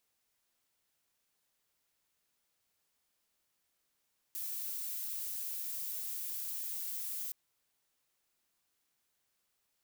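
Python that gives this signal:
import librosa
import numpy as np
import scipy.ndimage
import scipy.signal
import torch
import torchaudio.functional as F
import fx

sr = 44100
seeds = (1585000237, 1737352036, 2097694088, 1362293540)

y = fx.noise_colour(sr, seeds[0], length_s=2.97, colour='violet', level_db=-39.5)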